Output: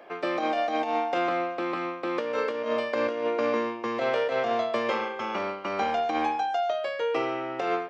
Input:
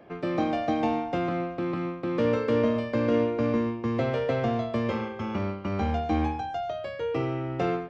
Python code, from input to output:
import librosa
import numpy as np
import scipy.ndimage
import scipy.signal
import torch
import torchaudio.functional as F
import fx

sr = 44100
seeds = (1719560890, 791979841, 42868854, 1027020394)

y = scipy.signal.sosfilt(scipy.signal.butter(2, 530.0, 'highpass', fs=sr, output='sos'), x)
y = fx.over_compress(y, sr, threshold_db=-31.0, ratio=-0.5)
y = y * librosa.db_to_amplitude(5.5)